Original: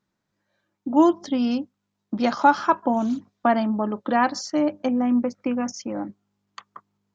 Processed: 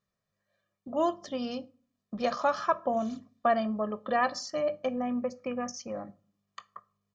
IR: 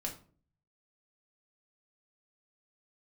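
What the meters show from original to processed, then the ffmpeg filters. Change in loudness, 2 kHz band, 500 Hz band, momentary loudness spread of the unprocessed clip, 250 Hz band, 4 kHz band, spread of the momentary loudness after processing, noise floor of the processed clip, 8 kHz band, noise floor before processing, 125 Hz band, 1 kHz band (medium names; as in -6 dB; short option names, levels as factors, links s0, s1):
-8.5 dB, -6.5 dB, -4.0 dB, 13 LU, -12.5 dB, -5.5 dB, 13 LU, -85 dBFS, no reading, -79 dBFS, -8.5 dB, -8.0 dB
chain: -filter_complex "[0:a]aecho=1:1:1.7:0.74,asplit=2[s0][s1];[1:a]atrim=start_sample=2205,adelay=19[s2];[s1][s2]afir=irnorm=-1:irlink=0,volume=0.168[s3];[s0][s3]amix=inputs=2:normalize=0,volume=0.422"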